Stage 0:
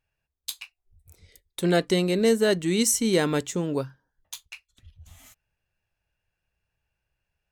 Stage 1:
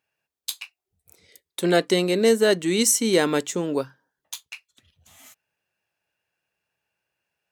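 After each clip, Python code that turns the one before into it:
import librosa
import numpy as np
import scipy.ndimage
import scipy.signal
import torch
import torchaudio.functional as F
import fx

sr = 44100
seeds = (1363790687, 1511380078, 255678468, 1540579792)

y = scipy.signal.sosfilt(scipy.signal.butter(2, 230.0, 'highpass', fs=sr, output='sos'), x)
y = F.gain(torch.from_numpy(y), 3.5).numpy()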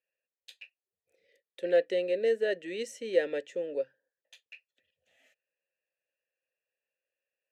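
y = fx.vowel_filter(x, sr, vowel='e')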